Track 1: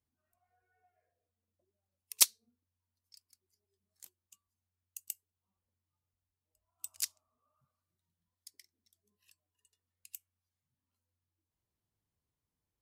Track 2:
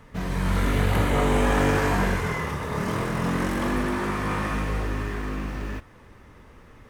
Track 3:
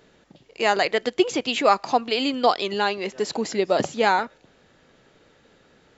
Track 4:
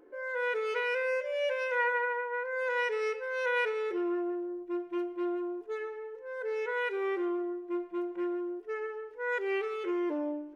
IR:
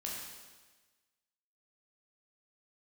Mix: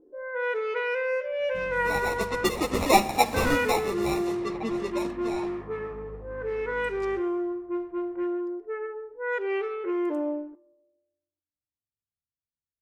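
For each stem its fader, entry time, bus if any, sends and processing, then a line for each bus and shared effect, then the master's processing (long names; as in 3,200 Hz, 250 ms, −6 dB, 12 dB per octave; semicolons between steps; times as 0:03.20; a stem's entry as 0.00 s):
−14.5 dB, 0.00 s, send −12.5 dB, slew-rate limiting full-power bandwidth 200 Hz
−15.5 dB, 1.40 s, send −11.5 dB, high-shelf EQ 5,600 Hz +8 dB; notch filter 1,500 Hz, Q 9.7; downward compressor, threshold −24 dBFS, peak gain reduction 7.5 dB
0:01.99 −11.5 dB → 0:02.51 0 dB → 0:03.53 0 dB → 0:03.78 −6.5 dB → 0:04.70 −6.5 dB → 0:05.17 −18 dB, 1.25 s, send −10.5 dB, decimation without filtering 28×; string-ensemble chorus
+2.5 dB, 0.00 s, muted 0:02.45–0:03.34, send −13.5 dB, high-shelf EQ 3,300 Hz −8.5 dB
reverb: on, RT60 1.3 s, pre-delay 12 ms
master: low-pass that shuts in the quiet parts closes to 330 Hz, open at −23 dBFS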